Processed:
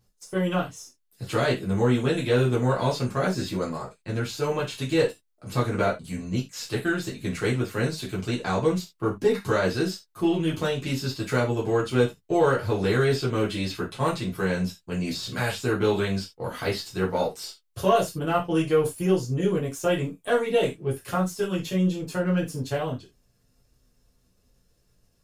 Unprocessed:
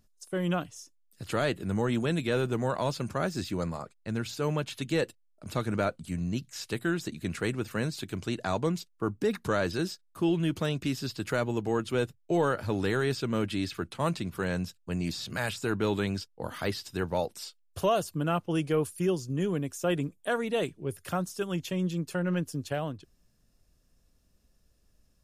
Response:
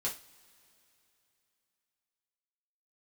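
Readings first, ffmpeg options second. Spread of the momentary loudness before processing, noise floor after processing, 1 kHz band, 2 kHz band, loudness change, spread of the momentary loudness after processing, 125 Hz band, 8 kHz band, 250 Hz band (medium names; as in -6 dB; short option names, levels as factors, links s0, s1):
7 LU, -68 dBFS, +5.0 dB, +4.5 dB, +5.0 dB, 8 LU, +5.0 dB, +4.0 dB, +4.0 dB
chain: -filter_complex "[0:a]aeval=exprs='if(lt(val(0),0),0.708*val(0),val(0))':c=same[s0];[1:a]atrim=start_sample=2205,atrim=end_sample=4410[s1];[s0][s1]afir=irnorm=-1:irlink=0,volume=1.41"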